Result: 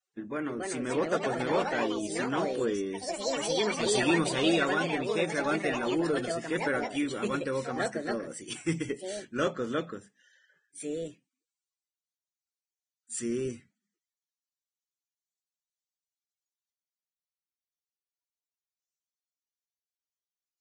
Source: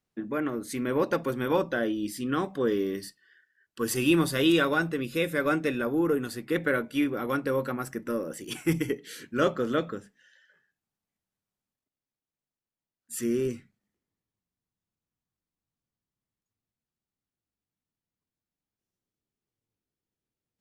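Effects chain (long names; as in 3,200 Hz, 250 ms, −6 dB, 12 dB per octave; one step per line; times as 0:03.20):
high-shelf EQ 5,800 Hz +6 dB
delay with pitch and tempo change per echo 347 ms, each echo +4 semitones, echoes 3
level −4.5 dB
Ogg Vorbis 16 kbit/s 22,050 Hz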